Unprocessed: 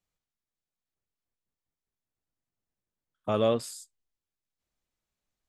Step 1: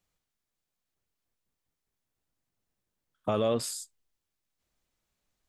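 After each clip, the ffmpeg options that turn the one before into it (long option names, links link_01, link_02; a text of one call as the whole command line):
ffmpeg -i in.wav -af "alimiter=limit=-23dB:level=0:latency=1:release=61,volume=5.5dB" out.wav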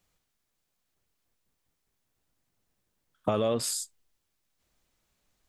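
ffmpeg -i in.wav -af "acompressor=threshold=-29dB:ratio=6,volume=6dB" out.wav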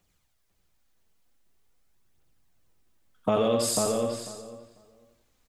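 ffmpeg -i in.wav -filter_complex "[0:a]asplit=2[link_01][link_02];[link_02]aecho=0:1:87|174|261|348|435:0.631|0.252|0.101|0.0404|0.0162[link_03];[link_01][link_03]amix=inputs=2:normalize=0,aphaser=in_gain=1:out_gain=1:delay=4.7:decay=0.4:speed=0.45:type=triangular,asplit=2[link_04][link_05];[link_05]adelay=495,lowpass=frequency=2100:poles=1,volume=-3dB,asplit=2[link_06][link_07];[link_07]adelay=495,lowpass=frequency=2100:poles=1,volume=0.16,asplit=2[link_08][link_09];[link_09]adelay=495,lowpass=frequency=2100:poles=1,volume=0.16[link_10];[link_06][link_08][link_10]amix=inputs=3:normalize=0[link_11];[link_04][link_11]amix=inputs=2:normalize=0,volume=1dB" out.wav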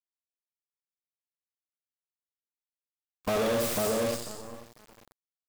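ffmpeg -i in.wav -filter_complex "[0:a]acrossover=split=2300[link_01][link_02];[link_02]aeval=exprs='(mod(29.9*val(0)+1,2)-1)/29.9':channel_layout=same[link_03];[link_01][link_03]amix=inputs=2:normalize=0,acrusher=bits=6:dc=4:mix=0:aa=0.000001,asoftclip=type=tanh:threshold=-28dB,volume=4dB" out.wav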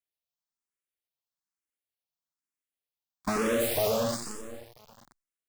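ffmpeg -i in.wav -filter_complex "[0:a]asplit=2[link_01][link_02];[link_02]afreqshift=1.1[link_03];[link_01][link_03]amix=inputs=2:normalize=1,volume=3.5dB" out.wav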